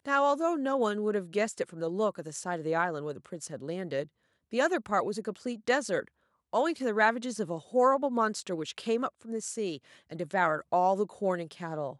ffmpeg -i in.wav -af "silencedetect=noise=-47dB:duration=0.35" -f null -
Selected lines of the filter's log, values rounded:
silence_start: 4.06
silence_end: 4.53 | silence_duration: 0.47
silence_start: 6.08
silence_end: 6.53 | silence_duration: 0.46